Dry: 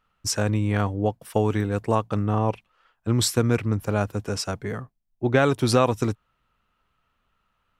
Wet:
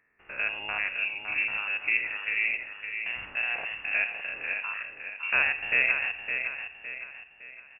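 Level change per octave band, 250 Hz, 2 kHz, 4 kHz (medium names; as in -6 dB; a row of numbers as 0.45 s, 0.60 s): under -25 dB, +9.0 dB, -6.5 dB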